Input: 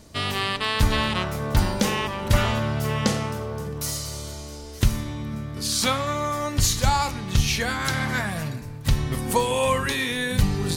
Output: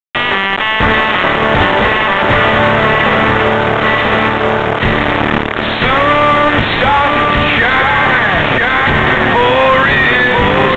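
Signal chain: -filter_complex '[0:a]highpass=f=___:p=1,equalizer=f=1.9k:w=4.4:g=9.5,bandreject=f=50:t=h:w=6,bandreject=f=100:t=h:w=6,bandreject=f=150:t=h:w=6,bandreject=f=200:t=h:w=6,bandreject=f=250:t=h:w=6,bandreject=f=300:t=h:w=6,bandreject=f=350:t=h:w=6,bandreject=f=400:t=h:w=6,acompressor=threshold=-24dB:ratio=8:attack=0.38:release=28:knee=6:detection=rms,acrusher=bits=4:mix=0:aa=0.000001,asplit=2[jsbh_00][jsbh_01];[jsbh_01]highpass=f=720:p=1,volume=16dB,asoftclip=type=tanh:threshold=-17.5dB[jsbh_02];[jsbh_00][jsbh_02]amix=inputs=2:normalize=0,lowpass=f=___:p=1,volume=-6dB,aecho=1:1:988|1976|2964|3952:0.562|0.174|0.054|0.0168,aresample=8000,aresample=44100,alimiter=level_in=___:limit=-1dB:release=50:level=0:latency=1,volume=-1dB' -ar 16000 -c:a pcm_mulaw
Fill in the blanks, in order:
94, 1.4k, 24dB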